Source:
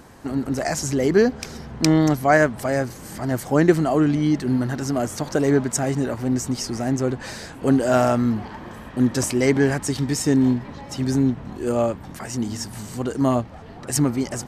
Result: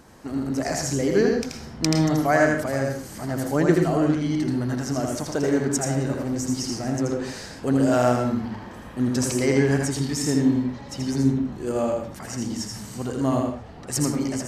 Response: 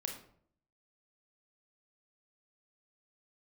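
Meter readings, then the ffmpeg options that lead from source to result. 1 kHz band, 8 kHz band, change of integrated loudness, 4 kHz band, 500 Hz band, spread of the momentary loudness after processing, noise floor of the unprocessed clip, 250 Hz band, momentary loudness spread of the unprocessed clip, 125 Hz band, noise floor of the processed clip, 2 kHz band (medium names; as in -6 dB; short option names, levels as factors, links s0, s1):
-2.5 dB, -1.0 dB, -2.5 dB, -0.5 dB, -2.0 dB, 11 LU, -39 dBFS, -2.0 dB, 13 LU, -2.0 dB, -40 dBFS, -2.5 dB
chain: -filter_complex "[0:a]equalizer=f=5700:w=1.5:g=3,asplit=2[s0][s1];[1:a]atrim=start_sample=2205,atrim=end_sample=6615,adelay=81[s2];[s1][s2]afir=irnorm=-1:irlink=0,volume=0.891[s3];[s0][s3]amix=inputs=2:normalize=0,volume=0.562"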